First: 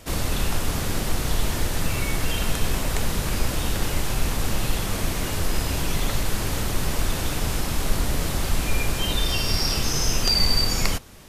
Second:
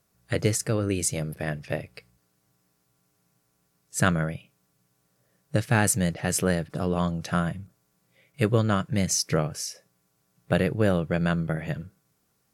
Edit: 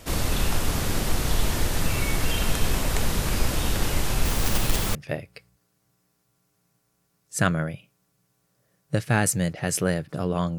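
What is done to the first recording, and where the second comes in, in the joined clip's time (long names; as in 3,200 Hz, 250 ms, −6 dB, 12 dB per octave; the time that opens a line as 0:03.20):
first
0:04.25–0:04.95: one scale factor per block 3 bits
0:04.95: continue with second from 0:01.56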